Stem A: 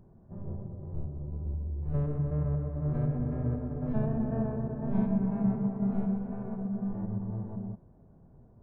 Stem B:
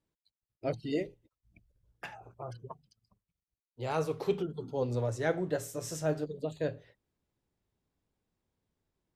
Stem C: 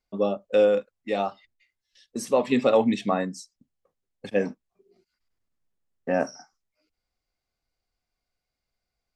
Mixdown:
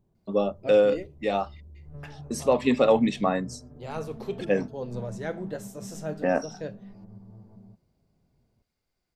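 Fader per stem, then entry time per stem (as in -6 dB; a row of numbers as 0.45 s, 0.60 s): -13.0 dB, -3.0 dB, 0.0 dB; 0.00 s, 0.00 s, 0.15 s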